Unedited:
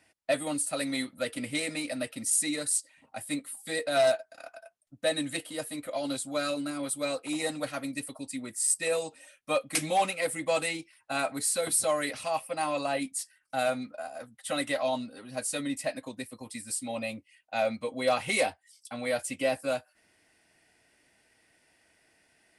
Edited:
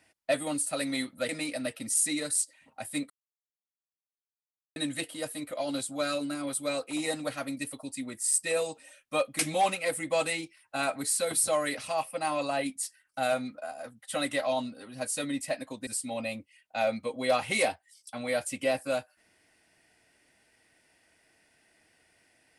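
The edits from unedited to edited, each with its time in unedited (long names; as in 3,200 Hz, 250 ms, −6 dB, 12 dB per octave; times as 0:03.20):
0:01.29–0:01.65: remove
0:03.46–0:05.12: silence
0:16.23–0:16.65: remove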